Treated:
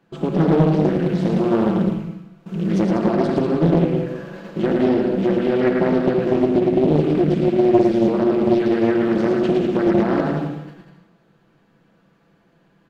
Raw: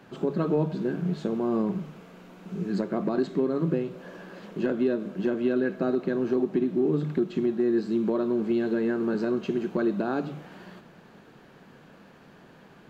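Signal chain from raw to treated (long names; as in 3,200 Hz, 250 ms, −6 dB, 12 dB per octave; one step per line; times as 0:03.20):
loose part that buzzes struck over −30 dBFS, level −37 dBFS
noise gate −43 dBFS, range −16 dB
low-shelf EQ 260 Hz +5.5 dB
mains-hum notches 60/120/180/240 Hz
comb filter 6 ms, depth 40%
bouncing-ball delay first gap 110 ms, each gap 0.75×, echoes 5
on a send at −6 dB: convolution reverb RT60 0.60 s, pre-delay 62 ms
on the sum: highs frequency-modulated by the lows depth 0.73 ms
level +4 dB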